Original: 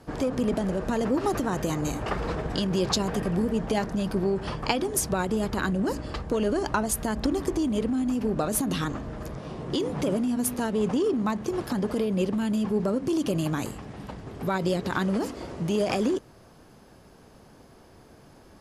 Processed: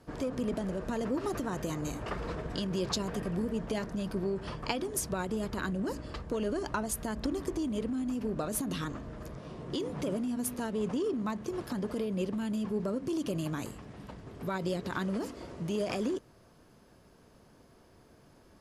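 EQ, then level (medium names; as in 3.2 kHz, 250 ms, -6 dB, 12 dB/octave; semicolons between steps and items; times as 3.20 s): band-stop 800 Hz, Q 12; -7.0 dB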